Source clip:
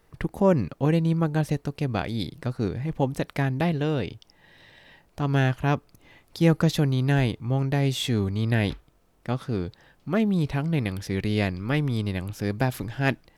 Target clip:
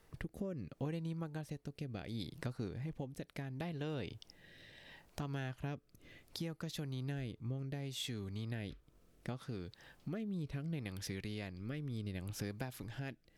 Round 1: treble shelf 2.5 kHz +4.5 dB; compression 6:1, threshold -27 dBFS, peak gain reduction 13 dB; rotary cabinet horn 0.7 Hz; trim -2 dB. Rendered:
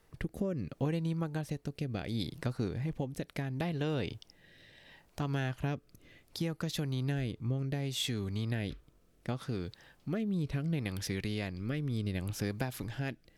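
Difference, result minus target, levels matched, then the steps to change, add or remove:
compression: peak gain reduction -7.5 dB
change: compression 6:1, threshold -36 dBFS, peak gain reduction 20.5 dB

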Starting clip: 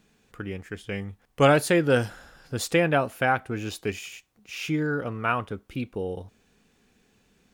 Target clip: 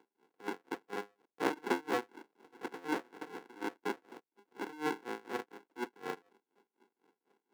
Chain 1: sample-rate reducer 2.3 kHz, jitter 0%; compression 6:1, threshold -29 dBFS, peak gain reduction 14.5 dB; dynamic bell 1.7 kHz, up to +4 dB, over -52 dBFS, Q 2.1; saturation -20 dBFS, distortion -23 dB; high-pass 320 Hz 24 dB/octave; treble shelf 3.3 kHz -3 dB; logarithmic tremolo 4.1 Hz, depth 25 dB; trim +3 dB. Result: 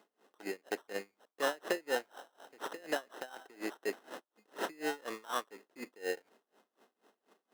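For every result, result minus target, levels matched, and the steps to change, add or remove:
compression: peak gain reduction +14.5 dB; sample-rate reducer: distortion -21 dB; 8 kHz band +6.0 dB
remove: compression 6:1, threshold -29 dBFS, peak gain reduction 14.5 dB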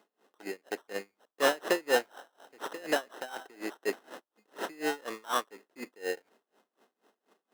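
sample-rate reducer: distortion -21 dB; 8 kHz band +6.0 dB
change: sample-rate reducer 610 Hz, jitter 0%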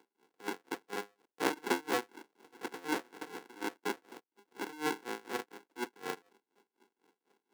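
8 kHz band +6.5 dB
change: treble shelf 3.3 kHz -12.5 dB

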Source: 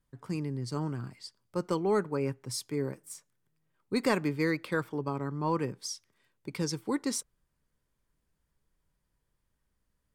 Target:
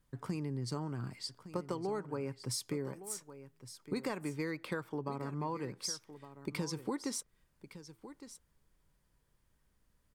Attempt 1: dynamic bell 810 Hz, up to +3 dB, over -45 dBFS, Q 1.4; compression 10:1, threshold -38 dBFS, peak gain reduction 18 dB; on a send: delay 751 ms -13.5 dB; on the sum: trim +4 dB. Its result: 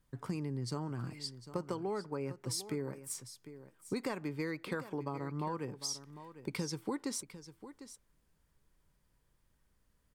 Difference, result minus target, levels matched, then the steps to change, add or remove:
echo 411 ms early
change: delay 1162 ms -13.5 dB

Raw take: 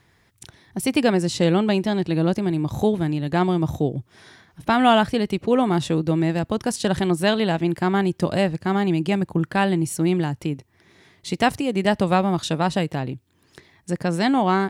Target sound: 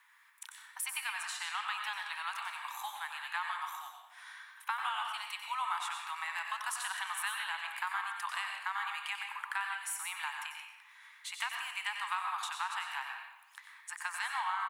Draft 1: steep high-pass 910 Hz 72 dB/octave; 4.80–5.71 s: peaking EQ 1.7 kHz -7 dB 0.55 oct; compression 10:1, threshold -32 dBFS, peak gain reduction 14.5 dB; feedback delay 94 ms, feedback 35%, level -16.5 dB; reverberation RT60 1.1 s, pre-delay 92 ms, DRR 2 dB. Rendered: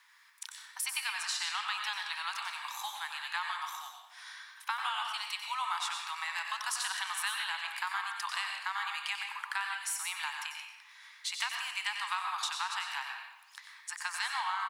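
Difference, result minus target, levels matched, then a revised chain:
4 kHz band +3.5 dB
steep high-pass 910 Hz 72 dB/octave; 4.80–5.71 s: peaking EQ 1.7 kHz -7 dB 0.55 oct; compression 10:1, threshold -32 dBFS, peak gain reduction 14.5 dB; peaking EQ 5 kHz -12 dB 0.97 oct; feedback delay 94 ms, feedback 35%, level -16.5 dB; reverberation RT60 1.1 s, pre-delay 92 ms, DRR 2 dB

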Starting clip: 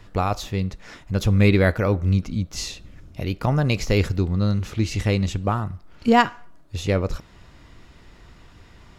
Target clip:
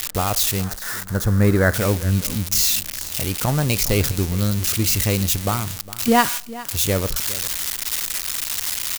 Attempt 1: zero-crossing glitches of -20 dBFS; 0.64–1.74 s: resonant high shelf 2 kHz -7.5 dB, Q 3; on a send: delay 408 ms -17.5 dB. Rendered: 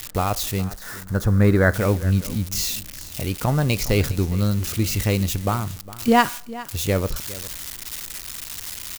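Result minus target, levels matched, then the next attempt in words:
zero-crossing glitches: distortion -8 dB
zero-crossing glitches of -11.5 dBFS; 0.64–1.74 s: resonant high shelf 2 kHz -7.5 dB, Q 3; on a send: delay 408 ms -17.5 dB

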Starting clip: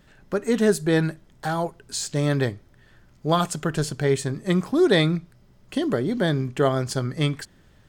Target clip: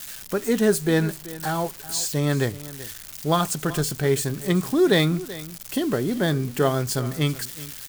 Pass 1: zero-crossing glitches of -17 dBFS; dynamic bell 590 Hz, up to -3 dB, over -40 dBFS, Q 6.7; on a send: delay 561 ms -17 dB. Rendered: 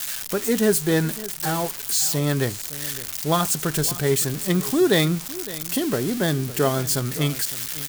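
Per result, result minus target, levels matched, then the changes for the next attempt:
echo 179 ms late; zero-crossing glitches: distortion +8 dB
change: delay 382 ms -17 dB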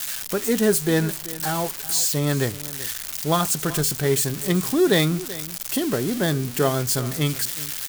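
zero-crossing glitches: distortion +8 dB
change: zero-crossing glitches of -25 dBFS

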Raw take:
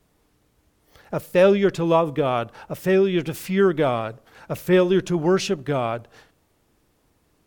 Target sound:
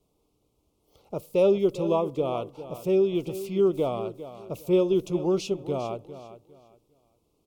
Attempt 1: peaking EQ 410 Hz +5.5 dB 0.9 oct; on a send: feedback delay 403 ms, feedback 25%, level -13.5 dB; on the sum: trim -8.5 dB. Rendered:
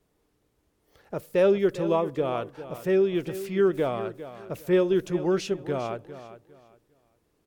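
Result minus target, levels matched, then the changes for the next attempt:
2 kHz band +8.5 dB
add first: Butterworth band-stop 1.7 kHz, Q 1.3

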